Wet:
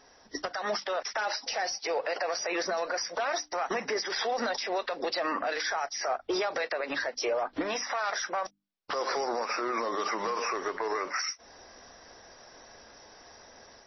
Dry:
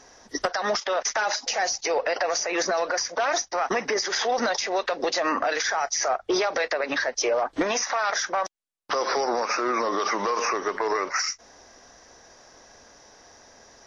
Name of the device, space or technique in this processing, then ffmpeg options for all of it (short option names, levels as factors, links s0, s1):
low-bitrate web radio: -filter_complex "[0:a]bandreject=f=50:t=h:w=6,bandreject=f=100:t=h:w=6,bandreject=f=150:t=h:w=6,bandreject=f=200:t=h:w=6,bandreject=f=250:t=h:w=6,bandreject=f=300:t=h:w=6,asettb=1/sr,asplit=3[s0][s1][s2];[s0]atrim=end=1.534[s3];[s1]atrim=start=1.53:end=2.71,asetpts=PTS-STARTPTS,afade=t=in:d=0.004:c=qsin,afade=t=out:st=1.176:d=0.004:c=qsin,lowshelf=f=100:g=-3[s4];[s2]atrim=start=2.706[s5];[s3][s4]acrossfade=d=0.004:c1=hsin:c2=qsin[s6];[s6][s5]acrossfade=d=0.004:c1=qsin:c2=hsin,dynaudnorm=f=810:g=3:m=1.88,alimiter=limit=0.158:level=0:latency=1:release=257,volume=0.531" -ar 22050 -c:a libmp3lame -b:a 24k